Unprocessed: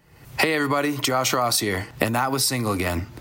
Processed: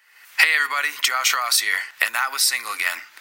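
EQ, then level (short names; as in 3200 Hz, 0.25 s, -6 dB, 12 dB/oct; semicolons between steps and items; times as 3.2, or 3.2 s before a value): resonant high-pass 1700 Hz, resonance Q 1.8; +3.0 dB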